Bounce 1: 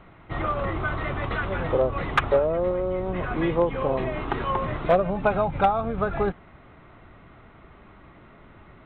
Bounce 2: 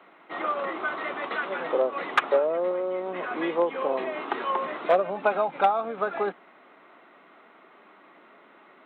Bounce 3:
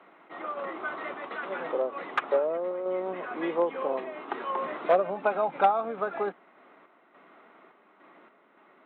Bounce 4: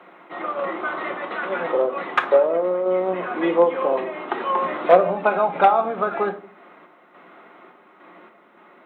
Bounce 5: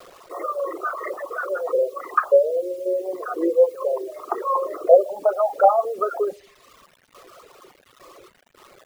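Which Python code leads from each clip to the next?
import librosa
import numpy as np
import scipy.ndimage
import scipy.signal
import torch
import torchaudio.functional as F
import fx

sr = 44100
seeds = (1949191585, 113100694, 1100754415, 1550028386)

y1 = scipy.signal.sosfilt(scipy.signal.bessel(8, 380.0, 'highpass', norm='mag', fs=sr, output='sos'), x)
y2 = fx.tremolo_random(y1, sr, seeds[0], hz=3.5, depth_pct=55)
y2 = fx.high_shelf(y2, sr, hz=3300.0, db=-8.5)
y3 = fx.room_shoebox(y2, sr, seeds[1], volume_m3=410.0, walls='furnished', distance_m=0.91)
y3 = F.gain(torch.from_numpy(y3), 7.5).numpy()
y4 = fx.envelope_sharpen(y3, sr, power=3.0)
y4 = fx.quant_dither(y4, sr, seeds[2], bits=8, dither='none')
y4 = fx.dereverb_blind(y4, sr, rt60_s=1.5)
y4 = F.gain(torch.from_numpy(y4), 1.0).numpy()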